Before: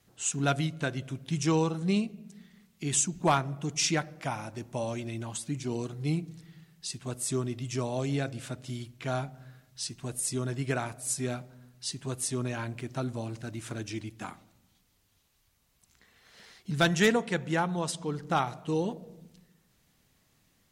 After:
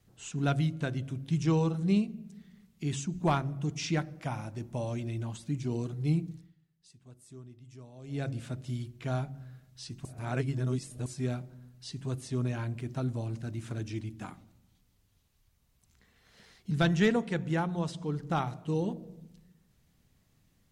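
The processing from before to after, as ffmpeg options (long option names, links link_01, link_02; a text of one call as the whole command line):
ffmpeg -i in.wav -filter_complex "[0:a]asplit=5[link_01][link_02][link_03][link_04][link_05];[link_01]atrim=end=6.6,asetpts=PTS-STARTPTS,afade=type=out:start_time=6.32:duration=0.28:curve=qua:silence=0.125893[link_06];[link_02]atrim=start=6.6:end=7.96,asetpts=PTS-STARTPTS,volume=-18dB[link_07];[link_03]atrim=start=7.96:end=10.052,asetpts=PTS-STARTPTS,afade=type=in:duration=0.28:curve=qua:silence=0.125893[link_08];[link_04]atrim=start=10.048:end=11.062,asetpts=PTS-STARTPTS,areverse[link_09];[link_05]atrim=start=11.058[link_10];[link_06][link_07][link_08]concat=n=3:v=0:a=1[link_11];[link_11][link_09]acrossfade=duration=0.004:curve1=hsin:curve2=hsin[link_12];[link_12][link_10]acrossfade=duration=0.004:curve1=hsin:curve2=hsin,lowshelf=frequency=270:gain=11,bandreject=frequency=45.38:width_type=h:width=4,bandreject=frequency=90.76:width_type=h:width=4,bandreject=frequency=136.14:width_type=h:width=4,bandreject=frequency=181.52:width_type=h:width=4,bandreject=frequency=226.9:width_type=h:width=4,bandreject=frequency=272.28:width_type=h:width=4,bandreject=frequency=317.66:width_type=h:width=4,bandreject=frequency=363.04:width_type=h:width=4,acrossover=split=5500[link_13][link_14];[link_14]acompressor=threshold=-48dB:ratio=4:attack=1:release=60[link_15];[link_13][link_15]amix=inputs=2:normalize=0,volume=-5.5dB" out.wav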